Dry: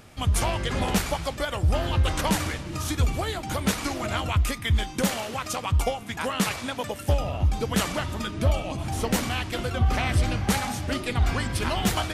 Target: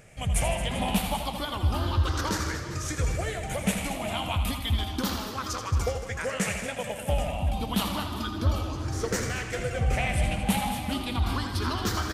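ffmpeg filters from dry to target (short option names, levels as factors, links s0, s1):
-af "afftfilt=real='re*pow(10,11/40*sin(2*PI*(0.52*log(max(b,1)*sr/1024/100)/log(2)-(0.31)*(pts-256)/sr)))':imag='im*pow(10,11/40*sin(2*PI*(0.52*log(max(b,1)*sr/1024/100)/log(2)-(0.31)*(pts-256)/sr)))':win_size=1024:overlap=0.75,aecho=1:1:82|157|224|391|785:0.355|0.211|0.237|0.168|0.168,volume=0.562"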